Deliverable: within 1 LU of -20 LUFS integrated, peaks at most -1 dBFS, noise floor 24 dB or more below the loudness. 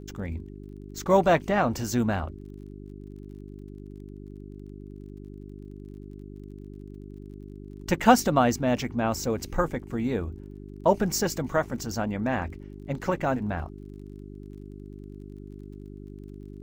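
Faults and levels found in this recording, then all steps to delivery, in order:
tick rate 33 per s; hum 50 Hz; highest harmonic 400 Hz; hum level -40 dBFS; loudness -26.5 LUFS; peak level -4.5 dBFS; loudness target -20.0 LUFS
-> de-click; de-hum 50 Hz, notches 8; trim +6.5 dB; peak limiter -1 dBFS

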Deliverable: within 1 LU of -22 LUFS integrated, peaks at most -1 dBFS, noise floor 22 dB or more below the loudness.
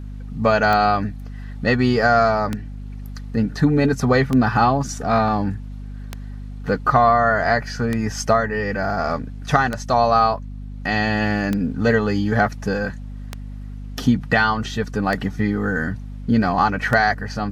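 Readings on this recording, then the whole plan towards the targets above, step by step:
clicks found 10; hum 50 Hz; highest harmonic 250 Hz; hum level -30 dBFS; loudness -19.5 LUFS; peak level -2.0 dBFS; loudness target -22.0 LUFS
-> de-click; de-hum 50 Hz, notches 5; trim -2.5 dB

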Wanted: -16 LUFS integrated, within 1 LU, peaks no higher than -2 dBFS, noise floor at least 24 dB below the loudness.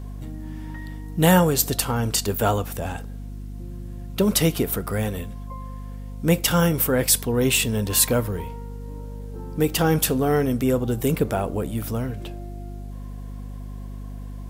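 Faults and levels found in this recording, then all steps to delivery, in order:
hum 50 Hz; highest harmonic 250 Hz; hum level -31 dBFS; loudness -22.0 LUFS; peak level -3.0 dBFS; loudness target -16.0 LUFS
-> hum notches 50/100/150/200/250 Hz; trim +6 dB; peak limiter -2 dBFS

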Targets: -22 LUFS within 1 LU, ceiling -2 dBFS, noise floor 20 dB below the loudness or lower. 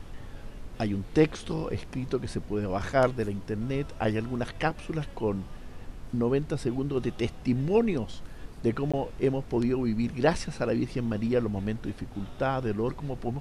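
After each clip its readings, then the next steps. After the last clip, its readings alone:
dropouts 1; longest dropout 16 ms; noise floor -44 dBFS; noise floor target -50 dBFS; loudness -29.5 LUFS; peak level -8.0 dBFS; loudness target -22.0 LUFS
-> interpolate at 8.92 s, 16 ms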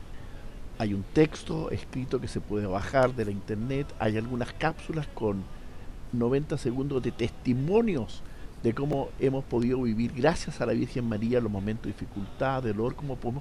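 dropouts 0; noise floor -44 dBFS; noise floor target -50 dBFS
-> noise print and reduce 6 dB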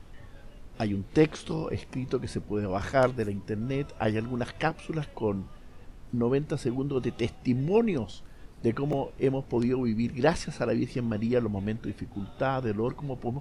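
noise floor -49 dBFS; noise floor target -50 dBFS
-> noise print and reduce 6 dB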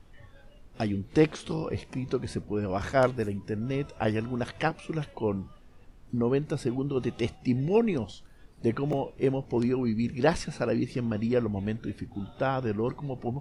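noise floor -53 dBFS; loudness -29.5 LUFS; peak level -8.0 dBFS; loudness target -22.0 LUFS
-> trim +7.5 dB; peak limiter -2 dBFS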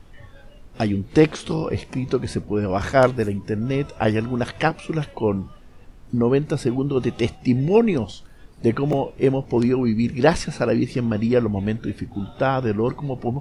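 loudness -22.0 LUFS; peak level -2.0 dBFS; noise floor -46 dBFS

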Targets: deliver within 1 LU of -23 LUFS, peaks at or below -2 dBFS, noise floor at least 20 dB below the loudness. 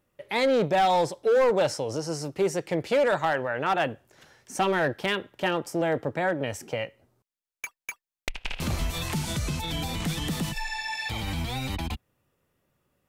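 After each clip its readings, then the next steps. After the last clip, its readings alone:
clipped samples 1.2%; clipping level -17.5 dBFS; dropouts 1; longest dropout 2.0 ms; loudness -27.5 LUFS; peak level -17.5 dBFS; loudness target -23.0 LUFS
-> clip repair -17.5 dBFS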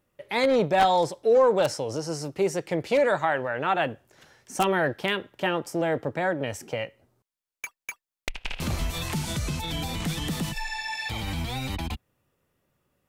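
clipped samples 0.0%; dropouts 1; longest dropout 2.0 ms
-> interpolate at 6.54 s, 2 ms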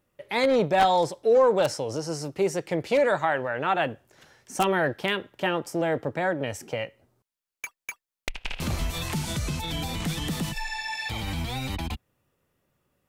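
dropouts 0; loudness -26.5 LUFS; peak level -8.5 dBFS; loudness target -23.0 LUFS
-> trim +3.5 dB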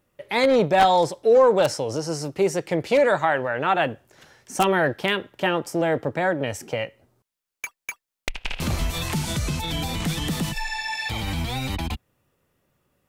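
loudness -23.0 LUFS; peak level -5.0 dBFS; noise floor -86 dBFS

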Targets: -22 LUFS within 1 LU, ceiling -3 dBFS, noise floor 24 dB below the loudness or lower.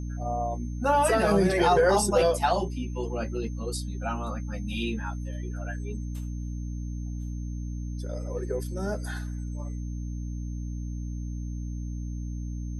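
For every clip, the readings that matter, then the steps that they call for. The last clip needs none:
hum 60 Hz; highest harmonic 300 Hz; hum level -31 dBFS; steady tone 6.3 kHz; tone level -56 dBFS; loudness -29.5 LUFS; peak level -11.0 dBFS; loudness target -22.0 LUFS
-> hum notches 60/120/180/240/300 Hz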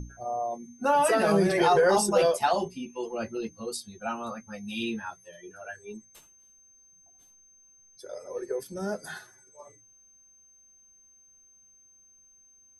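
hum not found; steady tone 6.3 kHz; tone level -56 dBFS
-> band-stop 6.3 kHz, Q 30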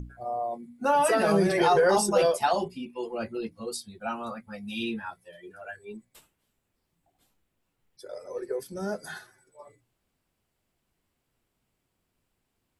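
steady tone not found; loudness -27.0 LUFS; peak level -11.0 dBFS; loudness target -22.0 LUFS
-> trim +5 dB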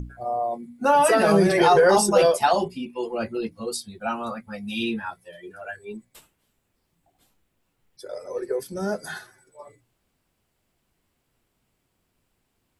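loudness -22.5 LUFS; peak level -6.0 dBFS; noise floor -74 dBFS

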